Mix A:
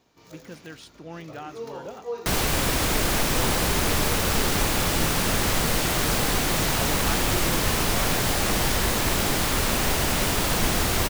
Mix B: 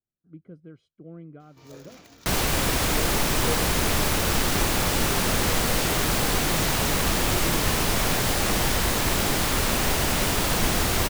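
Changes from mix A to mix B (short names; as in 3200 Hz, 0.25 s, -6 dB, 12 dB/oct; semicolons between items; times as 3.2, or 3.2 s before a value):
speech: add running mean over 49 samples; first sound: entry +1.40 s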